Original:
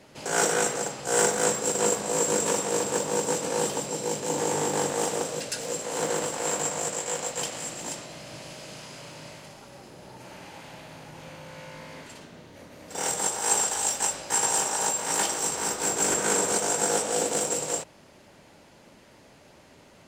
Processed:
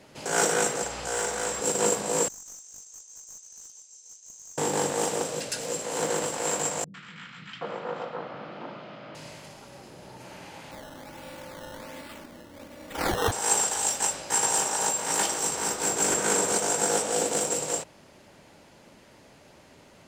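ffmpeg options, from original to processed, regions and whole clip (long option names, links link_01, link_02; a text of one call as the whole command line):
ffmpeg -i in.wav -filter_complex "[0:a]asettb=1/sr,asplit=3[link_01][link_02][link_03];[link_01]atrim=end=0.834[link_04];[link_02]atrim=start=0.83:end=1.61,asetpts=PTS-STARTPTS,afade=type=in:duration=0.004:curve=qsin,afade=type=out:start_time=0.776:duration=0.004:curve=qsin,asplit=2[link_05][link_06];[link_06]highpass=frequency=720:poles=1,volume=9dB,asoftclip=type=tanh:threshold=-8.5dB[link_07];[link_05][link_07]amix=inputs=2:normalize=0,lowpass=frequency=6200:poles=1,volume=-6dB,aeval=exprs='val(0)+0.00631*(sin(2*PI*60*n/s)+sin(2*PI*2*60*n/s)/2+sin(2*PI*3*60*n/s)/3+sin(2*PI*4*60*n/s)/4+sin(2*PI*5*60*n/s)/5)':channel_layout=same,acompressor=threshold=-31dB:ratio=2:attack=3.2:release=140:knee=1:detection=peak[link_08];[link_03]atrim=start=1.606[link_09];[link_04][link_08]acrossfade=duration=0.004:curve1=hsin:curve2=qsin[link_10];[link_10][link_09]acrossfade=duration=0.004:curve1=qsin:curve2=hsin,asettb=1/sr,asplit=3[link_11][link_12][link_13];[link_11]atrim=end=2.284[link_14];[link_12]atrim=start=2.28:end=4.58,asetpts=PTS-STARTPTS,afade=type=in:duration=0.004:curve=qsin,afade=type=out:start_time=2.296:duration=0.004:curve=qsin,bandpass=frequency=6300:width_type=q:width=17,aeval=exprs='clip(val(0),-1,0.00794)':channel_layout=same[link_15];[link_13]atrim=start=4.576[link_16];[link_14][link_15]acrossfade=duration=0.004:curve1=hsin:curve2=qsin[link_17];[link_17][link_16]acrossfade=duration=0.004:curve1=qsin:curve2=hsin,asettb=1/sr,asplit=3[link_18][link_19][link_20];[link_18]atrim=end=6.844[link_21];[link_19]atrim=start=6.84:end=9.15,asetpts=PTS-STARTPTS,afade=type=in:duration=0.004:curve=qsin,afade=type=out:start_time=2.306:duration=0.004:curve=qsin,highpass=140,equalizer=frequency=200:width_type=q:width=4:gain=8,equalizer=frequency=1300:width_type=q:width=4:gain=9,equalizer=frequency=2700:width_type=q:width=4:gain=-4,lowpass=frequency=3100:width=0.5412,lowpass=frequency=3100:width=1.3066,acrossover=split=200|1600[link_22][link_23][link_24];[link_24]adelay=100[link_25];[link_23]adelay=770[link_26];[link_22][link_26][link_25]amix=inputs=3:normalize=0,atrim=end_sample=101871[link_27];[link_20]atrim=start=9.146[link_28];[link_21][link_27]acrossfade=duration=0.004:curve1=hsin:curve2=qsin[link_29];[link_29][link_28]acrossfade=duration=0.004:curve1=qsin:curve2=hsin,asettb=1/sr,asplit=3[link_30][link_31][link_32];[link_30]atrim=end=10.714[link_33];[link_31]atrim=start=10.71:end=13.32,asetpts=PTS-STARTPTS,afade=type=in:duration=0.004:curve=qsin,afade=type=out:start_time=2.606:duration=0.004:curve=qsin,aecho=1:1:3.5:0.57,atrim=end_sample=115101,acrusher=samples=13:mix=1:aa=0.000001:lfo=1:lforange=13:lforate=1.3[link_34];[link_32]atrim=start=13.316[link_35];[link_33][link_34]acrossfade=duration=0.004:curve1=hsin:curve2=qsin[link_36];[link_36][link_35]acrossfade=duration=0.004:curve1=qsin:curve2=hsin" out.wav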